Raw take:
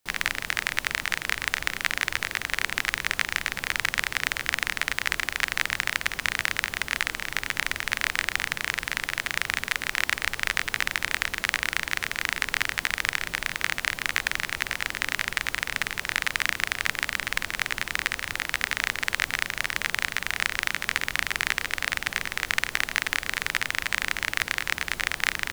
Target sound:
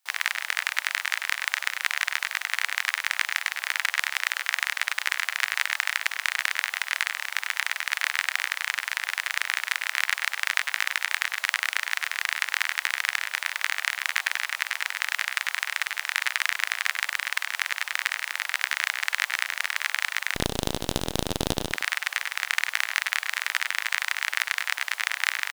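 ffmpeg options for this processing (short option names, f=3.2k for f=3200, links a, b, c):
-filter_complex "[0:a]highpass=f=750:w=0.5412,highpass=f=750:w=1.3066,asettb=1/sr,asplit=3[a][b][c];[a]atrim=end=20.354[d];[b]atrim=start=20.35:end=21.73,asetpts=PTS-STARTPTS,afade=t=in:d=0.004:c=qsin,afade=t=out:st=1.376:d=0.004:c=qsin,aeval=exprs='abs(val(0))':c=same[e];[c]atrim=start=21.726[f];[d][e]acrossfade=d=0.004:c1=hsin:c2=qsin[g];[g][f]acrossfade=d=0.004:c1=qsin:c2=hsin,asplit=2[h][i];[i]adelay=100,highpass=300,lowpass=3.4k,asoftclip=type=hard:threshold=-9dB,volume=-8dB[j];[h][j]amix=inputs=2:normalize=0"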